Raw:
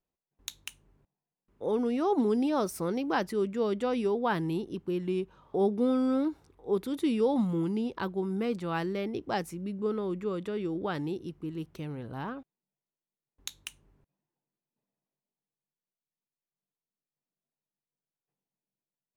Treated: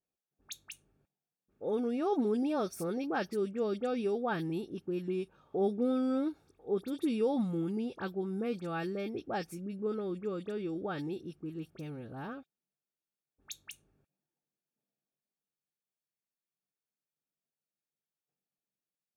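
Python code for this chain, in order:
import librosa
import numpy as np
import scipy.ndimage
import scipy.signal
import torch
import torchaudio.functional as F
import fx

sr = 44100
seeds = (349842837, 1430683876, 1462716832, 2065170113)

y = fx.notch_comb(x, sr, f0_hz=1000.0)
y = fx.dispersion(y, sr, late='highs', ms=46.0, hz=2400.0)
y = y * 10.0 ** (-3.5 / 20.0)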